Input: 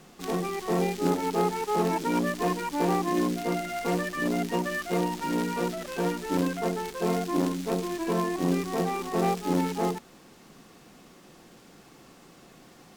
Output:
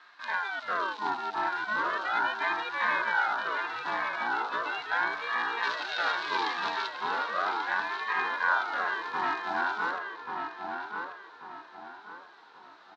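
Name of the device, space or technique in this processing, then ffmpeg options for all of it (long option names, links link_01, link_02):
voice changer toy: -filter_complex "[0:a]asettb=1/sr,asplit=3[link_01][link_02][link_03];[link_01]atrim=end=5.634[link_04];[link_02]atrim=start=5.63:end=6.88,asetpts=PTS-STARTPTS,afade=type=in:duration=0.004:curve=qsin,afade=type=out:start_time=1.246:duration=0.004:curve=qsin,equalizer=frequency=3800:width=0.52:gain=11.5[link_05];[link_03]atrim=start=6.876[link_06];[link_04][link_05]acrossfade=duration=0.004:curve1=hsin:curve2=qsin[link_07];[link_07][link_06]acrossfade=duration=0.004:curve1=qsin:curve2=hsin,aeval=exprs='val(0)*sin(2*PI*960*n/s+960*0.5/0.37*sin(2*PI*0.37*n/s))':channel_layout=same,highpass=430,equalizer=frequency=540:width_type=q:width=4:gain=-4,equalizer=frequency=940:width_type=q:width=4:gain=5,equalizer=frequency=1500:width_type=q:width=4:gain=8,equalizer=frequency=3900:width_type=q:width=4:gain=9,lowpass=frequency=4800:width=0.5412,lowpass=frequency=4800:width=1.3066,asplit=2[link_08][link_09];[link_09]adelay=1137,lowpass=frequency=2600:poles=1,volume=-4dB,asplit=2[link_10][link_11];[link_11]adelay=1137,lowpass=frequency=2600:poles=1,volume=0.37,asplit=2[link_12][link_13];[link_13]adelay=1137,lowpass=frequency=2600:poles=1,volume=0.37,asplit=2[link_14][link_15];[link_15]adelay=1137,lowpass=frequency=2600:poles=1,volume=0.37,asplit=2[link_16][link_17];[link_17]adelay=1137,lowpass=frequency=2600:poles=1,volume=0.37[link_18];[link_08][link_10][link_12][link_14][link_16][link_18]amix=inputs=6:normalize=0,volume=-4dB"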